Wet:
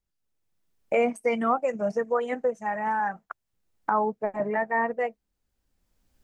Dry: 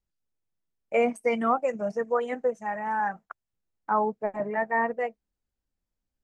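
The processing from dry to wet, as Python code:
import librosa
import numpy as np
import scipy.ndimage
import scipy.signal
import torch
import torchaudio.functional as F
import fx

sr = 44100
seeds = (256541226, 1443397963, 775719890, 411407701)

y = fx.recorder_agc(x, sr, target_db=-17.5, rise_db_per_s=14.0, max_gain_db=30)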